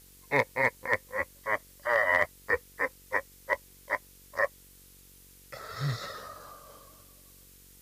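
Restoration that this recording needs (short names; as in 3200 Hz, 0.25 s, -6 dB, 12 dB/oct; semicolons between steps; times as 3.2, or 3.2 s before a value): clip repair -13.5 dBFS; de-hum 46.7 Hz, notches 11; noise print and reduce 19 dB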